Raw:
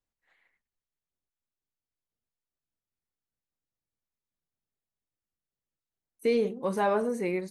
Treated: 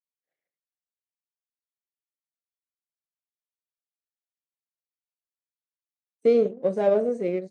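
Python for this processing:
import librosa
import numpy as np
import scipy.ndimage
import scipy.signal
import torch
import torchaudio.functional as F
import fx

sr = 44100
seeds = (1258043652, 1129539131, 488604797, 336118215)

y = fx.power_curve(x, sr, exponent=1.4)
y = scipy.signal.sosfilt(scipy.signal.ellip(3, 1.0, 40, [130.0, 7900.0], 'bandpass', fs=sr, output='sos'), y)
y = fx.low_shelf_res(y, sr, hz=760.0, db=8.0, q=3.0)
y = y * librosa.db_to_amplitude(-3.0)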